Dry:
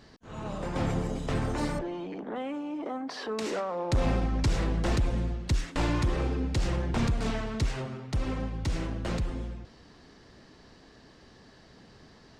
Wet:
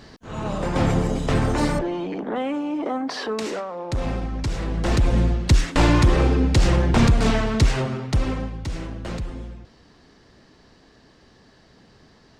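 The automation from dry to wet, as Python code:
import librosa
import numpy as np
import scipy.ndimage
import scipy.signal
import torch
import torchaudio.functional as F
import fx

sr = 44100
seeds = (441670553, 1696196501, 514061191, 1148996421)

y = fx.gain(x, sr, db=fx.line((3.17, 9.0), (3.71, 0.5), (4.59, 0.5), (5.19, 11.0), (8.04, 11.0), (8.64, 1.0)))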